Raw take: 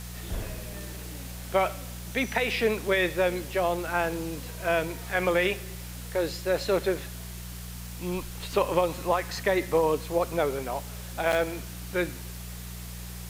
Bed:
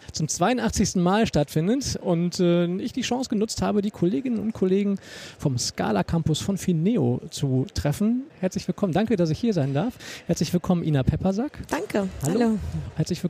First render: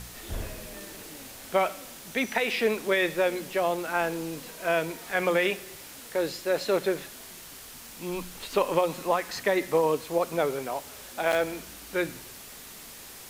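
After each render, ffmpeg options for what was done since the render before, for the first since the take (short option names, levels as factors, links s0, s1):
-af "bandreject=f=60:t=h:w=4,bandreject=f=120:t=h:w=4,bandreject=f=180:t=h:w=4"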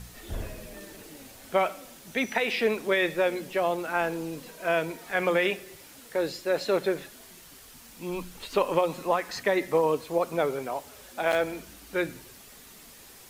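-af "afftdn=nr=6:nf=-45"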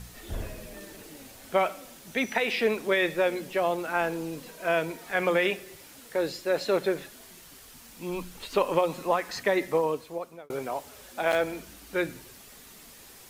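-filter_complex "[0:a]asplit=2[s0][s1];[s0]atrim=end=10.5,asetpts=PTS-STARTPTS,afade=t=out:st=9.63:d=0.87[s2];[s1]atrim=start=10.5,asetpts=PTS-STARTPTS,afade=t=in:d=0.004:c=hsin[s3];[s2][s3]concat=n=2:v=0:a=1"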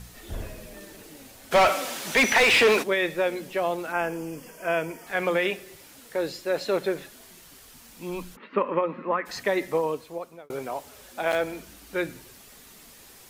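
-filter_complex "[0:a]asplit=3[s0][s1][s2];[s0]afade=t=out:st=1.51:d=0.02[s3];[s1]asplit=2[s4][s5];[s5]highpass=f=720:p=1,volume=17.8,asoftclip=type=tanh:threshold=0.299[s6];[s4][s6]amix=inputs=2:normalize=0,lowpass=f=5100:p=1,volume=0.501,afade=t=in:st=1.51:d=0.02,afade=t=out:st=2.82:d=0.02[s7];[s2]afade=t=in:st=2.82:d=0.02[s8];[s3][s7][s8]amix=inputs=3:normalize=0,asettb=1/sr,asplit=3[s9][s10][s11];[s9]atrim=end=3.924[s12];[s10]atrim=start=3.92:end=5.07,asetpts=PTS-STARTPTS,afade=t=in:d=0.004:c=qsin,afade=t=out:st=1.146:d=0.004:c=qsin,asuperstop=centerf=3900:order=4:qfactor=2.9[s13];[s11]atrim=start=5.066[s14];[s12][s13]acrossfade=d=0.004:c1=hsin:c2=qsin[s15];[s15][s14]acrossfade=d=0.004:c1=qsin:c2=hsin,asplit=3[s16][s17][s18];[s16]afade=t=out:st=8.35:d=0.02[s19];[s17]highpass=f=170:w=0.5412,highpass=f=170:w=1.3066,equalizer=f=220:t=q:w=4:g=9,equalizer=f=740:t=q:w=4:g=-9,equalizer=f=1200:t=q:w=4:g=5,equalizer=f=1900:t=q:w=4:g=4,lowpass=f=2300:w=0.5412,lowpass=f=2300:w=1.3066,afade=t=in:st=8.35:d=0.02,afade=t=out:st=9.25:d=0.02[s20];[s18]afade=t=in:st=9.25:d=0.02[s21];[s19][s20][s21]amix=inputs=3:normalize=0"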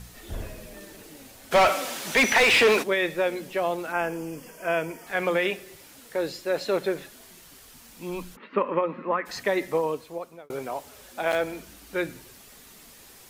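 -af anull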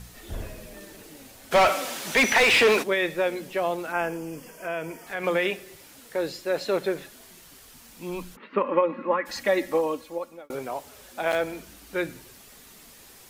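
-filter_complex "[0:a]asettb=1/sr,asplit=3[s0][s1][s2];[s0]atrim=end=4.164[s3];[s1]atrim=start=4.16:end=5.24,asetpts=PTS-STARTPTS,afade=t=in:d=0.004:c=qsin,afade=t=out:st=1.076:d=0.004:c=qsin,acompressor=threshold=0.0316:ratio=2:attack=3.2:release=140:knee=1:detection=peak[s4];[s2]atrim=start=5.236[s5];[s3][s4]acrossfade=d=0.004:c1=hsin:c2=qsin[s6];[s6][s5]acrossfade=d=0.004:c1=qsin:c2=hsin,asettb=1/sr,asplit=3[s7][s8][s9];[s7]atrim=end=8.644[s10];[s8]atrim=start=8.64:end=10.55,asetpts=PTS-STARTPTS,afade=t=in:d=0.004:c=qsin,afade=t=out:st=1.906:d=0.004:c=qsin,aecho=1:1:3.6:0.65,atrim=end_sample=84231[s11];[s9]atrim=start=10.546[s12];[s10][s11]acrossfade=d=0.004:c1=hsin:c2=qsin[s13];[s13][s12]acrossfade=d=0.004:c1=qsin:c2=hsin"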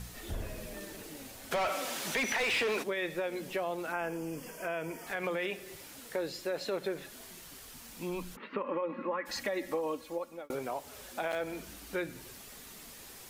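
-af "alimiter=limit=0.133:level=0:latency=1:release=85,acompressor=threshold=0.0158:ratio=2"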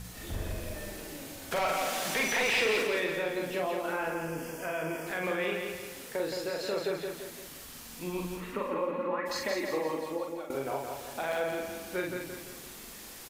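-filter_complex "[0:a]asplit=2[s0][s1];[s1]adelay=44,volume=0.708[s2];[s0][s2]amix=inputs=2:normalize=0,asplit=2[s3][s4];[s4]aecho=0:1:170|340|510|680|850|1020:0.562|0.264|0.124|0.0584|0.0274|0.0129[s5];[s3][s5]amix=inputs=2:normalize=0"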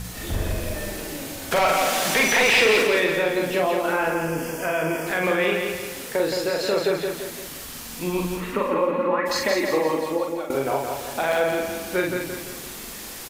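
-af "volume=3.16"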